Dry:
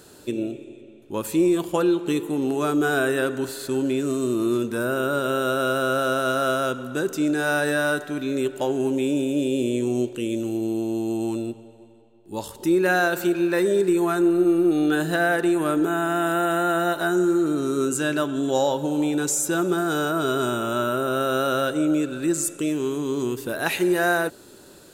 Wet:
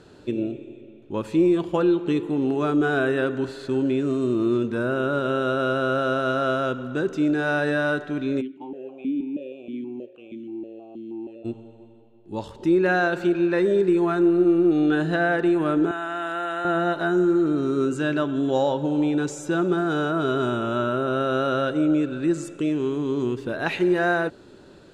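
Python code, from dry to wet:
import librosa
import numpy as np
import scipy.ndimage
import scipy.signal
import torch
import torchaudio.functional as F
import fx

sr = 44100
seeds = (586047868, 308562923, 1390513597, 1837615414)

y = fx.vowel_held(x, sr, hz=6.3, at=(8.4, 11.44), fade=0.02)
y = fx.highpass(y, sr, hz=1100.0, slope=6, at=(15.91, 16.65))
y = scipy.signal.sosfilt(scipy.signal.butter(2, 3700.0, 'lowpass', fs=sr, output='sos'), y)
y = fx.low_shelf(y, sr, hz=290.0, db=5.0)
y = F.gain(torch.from_numpy(y), -1.5).numpy()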